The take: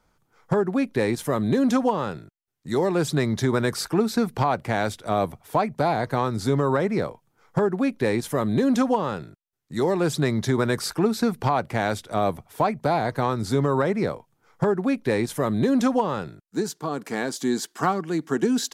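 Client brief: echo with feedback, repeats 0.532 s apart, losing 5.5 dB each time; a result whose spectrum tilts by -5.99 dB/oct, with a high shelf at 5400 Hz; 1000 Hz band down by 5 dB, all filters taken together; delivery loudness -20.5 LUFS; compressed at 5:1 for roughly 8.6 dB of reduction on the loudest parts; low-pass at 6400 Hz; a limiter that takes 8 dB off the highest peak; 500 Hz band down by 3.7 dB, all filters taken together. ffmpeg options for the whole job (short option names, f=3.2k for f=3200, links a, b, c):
-af "lowpass=6.4k,equalizer=f=500:t=o:g=-3.5,equalizer=f=1k:t=o:g=-5,highshelf=f=5.4k:g=-9,acompressor=threshold=-28dB:ratio=5,alimiter=level_in=1dB:limit=-24dB:level=0:latency=1,volume=-1dB,aecho=1:1:532|1064|1596|2128|2660|3192|3724:0.531|0.281|0.149|0.079|0.0419|0.0222|0.0118,volume=13.5dB"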